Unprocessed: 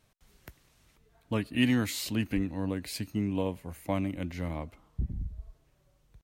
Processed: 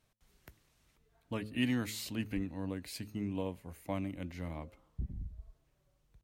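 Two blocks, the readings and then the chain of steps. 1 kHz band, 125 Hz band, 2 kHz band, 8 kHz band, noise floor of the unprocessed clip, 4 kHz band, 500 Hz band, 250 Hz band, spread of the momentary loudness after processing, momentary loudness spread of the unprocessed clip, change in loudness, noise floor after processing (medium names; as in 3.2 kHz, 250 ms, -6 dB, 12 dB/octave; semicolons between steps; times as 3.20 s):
-6.5 dB, -7.0 dB, -6.5 dB, -6.5 dB, -68 dBFS, -6.5 dB, -6.5 dB, -6.5 dB, 14 LU, 14 LU, -6.5 dB, -75 dBFS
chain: de-hum 106.7 Hz, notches 5; trim -6.5 dB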